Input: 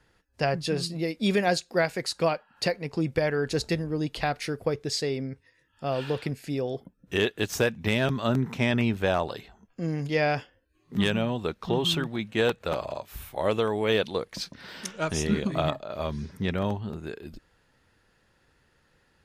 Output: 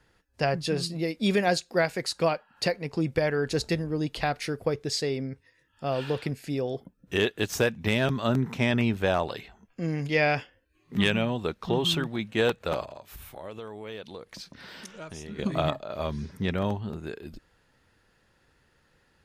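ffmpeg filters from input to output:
-filter_complex "[0:a]asettb=1/sr,asplit=3[s0][s1][s2];[s0]atrim=end=9.234[s3];[s1]atrim=start=9.23:end=11.25,asetpts=PTS-STARTPTS,afade=t=in:d=0.004:c=qsin,afade=t=out:st=2.016:d=0.004:c=qsin,equalizer=f=2300:t=o:w=0.77:g=5.5[s4];[s2]atrim=start=11.246[s5];[s3][s4]acrossfade=d=0.004:c1=hsin:c2=qsin[s6];[s6][s5]acrossfade=d=0.004:c1=qsin:c2=hsin,asettb=1/sr,asplit=3[s7][s8][s9];[s7]atrim=end=12.844[s10];[s8]atrim=start=12.84:end=15.39,asetpts=PTS-STARTPTS,afade=t=in:d=0.004:c=qsin,afade=t=out:st=2.546:d=0.004:c=qsin,acompressor=threshold=0.00891:ratio=3:attack=3.2:release=140:knee=1:detection=peak[s11];[s9]atrim=start=15.386[s12];[s10][s11]acrossfade=d=0.004:c1=hsin:c2=qsin[s13];[s13][s12]acrossfade=d=0.004:c1=qsin:c2=hsin"

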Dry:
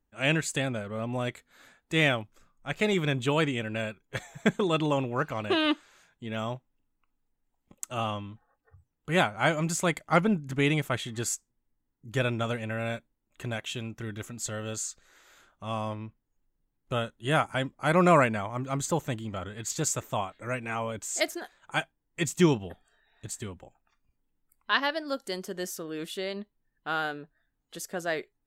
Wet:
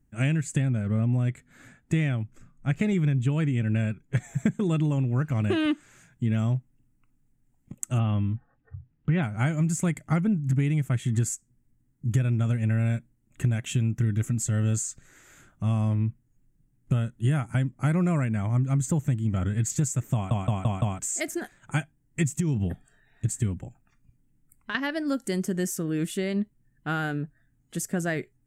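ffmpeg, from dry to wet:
-filter_complex "[0:a]asettb=1/sr,asplit=3[s0][s1][s2];[s0]atrim=end=0.434[s3];[s1]atrim=start=0.43:end=4.24,asetpts=PTS-STARTPTS,afade=t=in:d=0.004:c=qsin,afade=t=out:st=3.806:d=0.004:c=qsin,highshelf=f=8400:g=-9.5[s4];[s2]atrim=start=4.236[s5];[s3][s4]acrossfade=d=0.004:c1=hsin:c2=qsin[s6];[s6][s5]acrossfade=d=0.004:c1=qsin:c2=hsin,asplit=3[s7][s8][s9];[s7]afade=t=out:st=7.98:d=0.02[s10];[s8]lowpass=f=3800:w=0.5412,lowpass=f=3800:w=1.3066,afade=t=in:st=7.98:d=0.02,afade=t=out:st=9.22:d=0.02[s11];[s9]afade=t=in:st=9.22:d=0.02[s12];[s10][s11][s12]amix=inputs=3:normalize=0,asettb=1/sr,asplit=3[s13][s14][s15];[s13]atrim=end=22.394[s16];[s14]atrim=start=22.39:end=24.75,asetpts=PTS-STARTPTS,afade=t=in:d=0.004:c=qsin,afade=t=out:st=2.356:d=0.004:c=qsin,acompressor=threshold=0.0282:ratio=6:attack=3.2:release=140:knee=1:detection=peak[s17];[s15]atrim=start=24.746[s18];[s16][s17]acrossfade=d=0.004:c1=hsin:c2=qsin[s19];[s19][s18]acrossfade=d=0.004:c1=qsin:c2=hsin,asplit=6[s20][s21][s22][s23][s24][s25];[s20]atrim=end=20.312[s26];[s21]atrim=start=20.138:end=20.312[s27];[s22]atrim=start=20.138:end=20.312[s28];[s23]atrim=start=20.138:end=20.312[s29];[s24]atrim=start=20.138:end=20.312[s30];[s25]atrim=start=20.988[s31];[s26][s27]acrossfade=d=0.004:c1=hsin:c2=hsin[s32];[s32][s28]acrossfade=d=0.004:c1=hsin:c2=hsin[s33];[s33][s29]acrossfade=d=0.004:c1=hsin:c2=hsin[s34];[s34][s30]acrossfade=d=0.004:c1=hsin:c2=hsin[s35];[s35][s31]acrossfade=d=0.004:c1=hsin:c2=hsin,equalizer=f=125:t=o:w=1:g=11,equalizer=f=250:t=o:w=1:g=3,equalizer=f=500:t=o:w=1:g=-7,equalizer=f=1000:t=o:w=1:g=-8,equalizer=f=2000:t=o:w=1:g=3,equalizer=f=4000:t=o:w=1:g=-9,equalizer=f=8000:t=o:w=1:g=8,acompressor=threshold=0.0316:ratio=12,tiltshelf=f=1300:g=3.5,volume=2"

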